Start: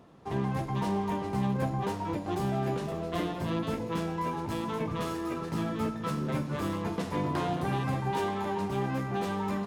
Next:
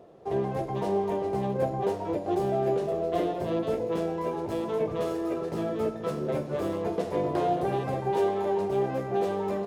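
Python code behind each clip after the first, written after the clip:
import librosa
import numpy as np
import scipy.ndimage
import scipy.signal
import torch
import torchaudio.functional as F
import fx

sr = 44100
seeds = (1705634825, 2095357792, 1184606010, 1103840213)

y = fx.band_shelf(x, sr, hz=510.0, db=12.0, octaves=1.3)
y = y * librosa.db_to_amplitude(-3.5)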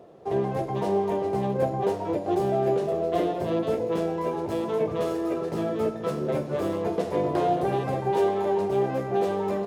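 y = scipy.signal.sosfilt(scipy.signal.butter(2, 60.0, 'highpass', fs=sr, output='sos'), x)
y = y * librosa.db_to_amplitude(2.5)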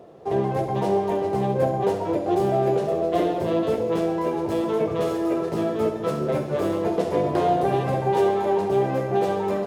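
y = fx.echo_feedback(x, sr, ms=69, feedback_pct=56, wet_db=-11)
y = y * librosa.db_to_amplitude(3.0)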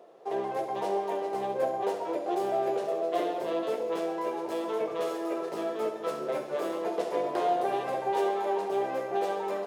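y = scipy.signal.sosfilt(scipy.signal.butter(2, 440.0, 'highpass', fs=sr, output='sos'), x)
y = y * librosa.db_to_amplitude(-4.5)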